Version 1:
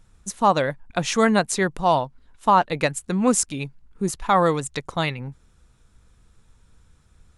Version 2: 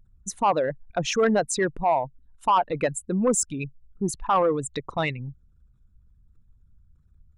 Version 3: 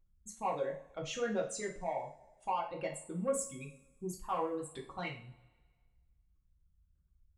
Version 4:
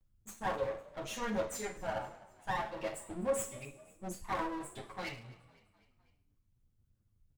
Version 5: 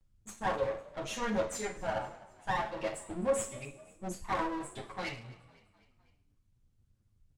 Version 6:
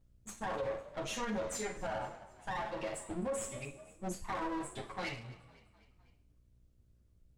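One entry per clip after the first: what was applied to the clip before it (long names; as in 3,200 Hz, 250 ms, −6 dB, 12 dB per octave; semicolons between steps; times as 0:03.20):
spectral envelope exaggerated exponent 2; soft clipping −10.5 dBFS, distortion −17 dB; level −1.5 dB
tape wow and flutter 150 cents; tuned comb filter 550 Hz, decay 0.39 s, mix 70%; coupled-rooms reverb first 0.36 s, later 1.6 s, from −22 dB, DRR −1.5 dB; level −8 dB
lower of the sound and its delayed copy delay 9.2 ms; echo with shifted repeats 253 ms, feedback 57%, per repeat +41 Hz, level −22 dB; level +1 dB
low-pass filter 10,000 Hz 12 dB per octave; level +3 dB
brickwall limiter −29 dBFS, peak gain reduction 10 dB; hum with harmonics 60 Hz, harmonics 11, −69 dBFS −9 dB per octave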